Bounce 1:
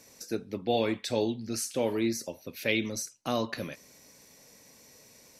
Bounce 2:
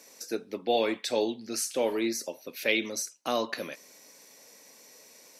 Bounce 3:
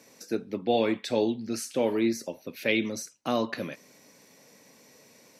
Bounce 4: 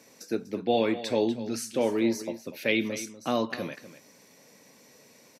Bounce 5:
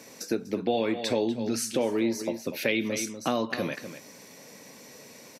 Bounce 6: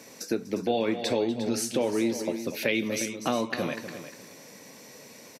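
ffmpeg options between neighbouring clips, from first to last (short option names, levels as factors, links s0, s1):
-af "highpass=320,volume=1.33"
-af "bass=f=250:g=13,treble=f=4000:g=-6"
-af "aecho=1:1:245:0.2"
-af "acompressor=threshold=0.0224:ratio=3,volume=2.37"
-af "aecho=1:1:354|708:0.251|0.0402"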